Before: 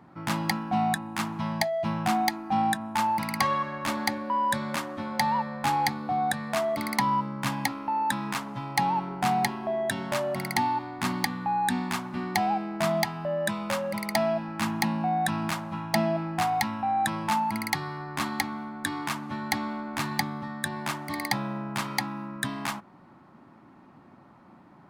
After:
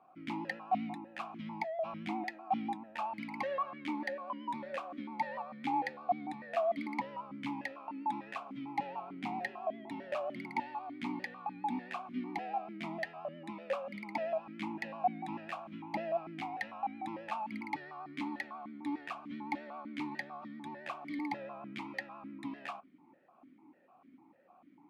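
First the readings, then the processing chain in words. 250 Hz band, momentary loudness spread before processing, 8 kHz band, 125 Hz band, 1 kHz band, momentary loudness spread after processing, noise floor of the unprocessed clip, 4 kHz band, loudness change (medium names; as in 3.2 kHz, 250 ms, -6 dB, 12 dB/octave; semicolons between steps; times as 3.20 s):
-10.0 dB, 6 LU, under -25 dB, -18.5 dB, -11.0 dB, 8 LU, -54 dBFS, -18.0 dB, -11.0 dB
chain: vibrato 7.5 Hz 57 cents; stepped vowel filter 6.7 Hz; trim +1.5 dB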